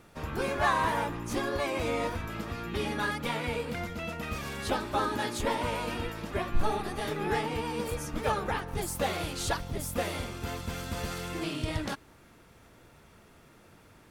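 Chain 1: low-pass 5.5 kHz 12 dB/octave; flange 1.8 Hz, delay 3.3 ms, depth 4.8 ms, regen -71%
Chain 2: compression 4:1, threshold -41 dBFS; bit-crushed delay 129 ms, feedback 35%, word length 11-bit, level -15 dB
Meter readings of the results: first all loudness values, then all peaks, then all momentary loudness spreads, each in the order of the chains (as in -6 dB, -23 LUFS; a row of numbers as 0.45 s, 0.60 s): -37.0 LUFS, -42.5 LUFS; -18.5 dBFS, -28.5 dBFS; 7 LU, 15 LU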